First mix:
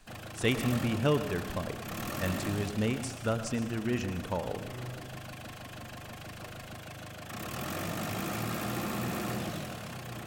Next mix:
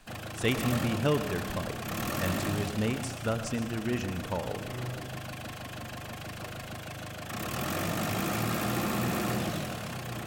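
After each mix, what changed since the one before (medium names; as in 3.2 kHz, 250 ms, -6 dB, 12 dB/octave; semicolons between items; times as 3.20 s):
background +4.0 dB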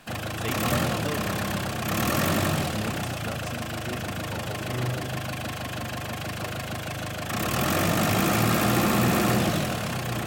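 speech -6.0 dB; background +8.0 dB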